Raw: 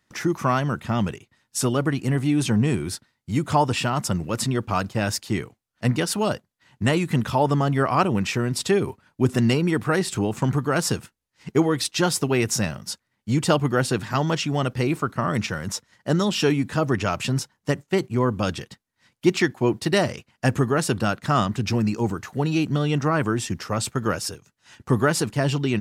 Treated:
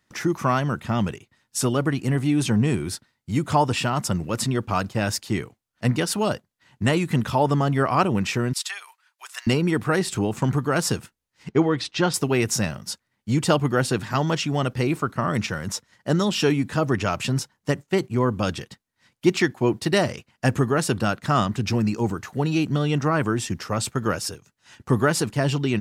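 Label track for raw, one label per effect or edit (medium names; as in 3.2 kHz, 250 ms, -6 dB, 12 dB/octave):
8.530000	9.470000	Bessel high-pass 1.5 kHz, order 6
11.490000	12.140000	low-pass 4.2 kHz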